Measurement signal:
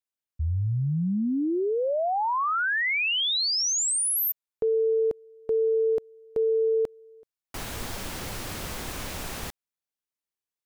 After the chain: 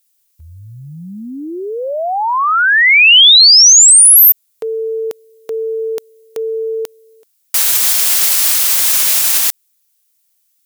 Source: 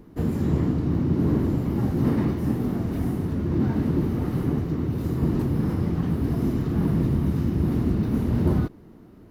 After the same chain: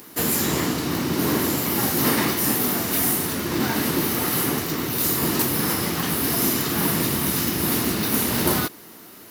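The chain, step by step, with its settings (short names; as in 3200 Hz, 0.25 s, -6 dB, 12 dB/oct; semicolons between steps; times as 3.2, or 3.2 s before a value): differentiator; maximiser +29 dB; gain -1 dB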